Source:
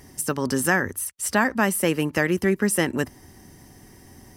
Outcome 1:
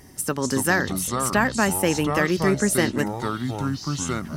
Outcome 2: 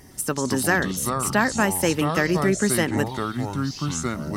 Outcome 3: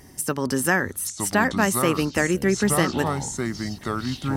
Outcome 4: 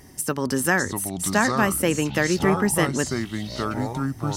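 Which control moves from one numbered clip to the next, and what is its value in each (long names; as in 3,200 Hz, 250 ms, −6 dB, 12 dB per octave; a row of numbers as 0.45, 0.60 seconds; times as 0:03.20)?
delay with pitch and tempo change per echo, delay time: 162, 109, 796, 524 milliseconds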